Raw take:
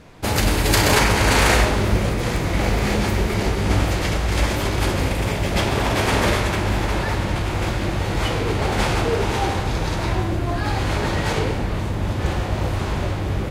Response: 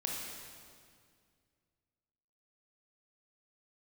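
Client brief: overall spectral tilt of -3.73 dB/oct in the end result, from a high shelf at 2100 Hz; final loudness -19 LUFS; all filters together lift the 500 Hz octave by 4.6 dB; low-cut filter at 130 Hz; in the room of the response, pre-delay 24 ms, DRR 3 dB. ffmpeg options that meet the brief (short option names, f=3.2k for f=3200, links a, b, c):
-filter_complex "[0:a]highpass=130,equalizer=f=500:t=o:g=5.5,highshelf=f=2.1k:g=4,asplit=2[a][b];[1:a]atrim=start_sample=2205,adelay=24[c];[b][c]afir=irnorm=-1:irlink=0,volume=-6dB[d];[a][d]amix=inputs=2:normalize=0,volume=-1dB"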